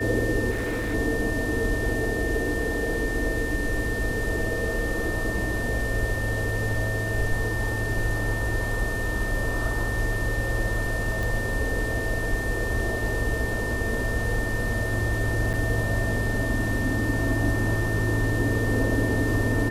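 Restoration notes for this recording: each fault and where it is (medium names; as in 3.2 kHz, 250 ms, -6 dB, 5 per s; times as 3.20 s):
whine 1.8 kHz -30 dBFS
0.50–0.95 s: clipped -24 dBFS
11.23 s: pop
15.53–15.54 s: dropout 7.7 ms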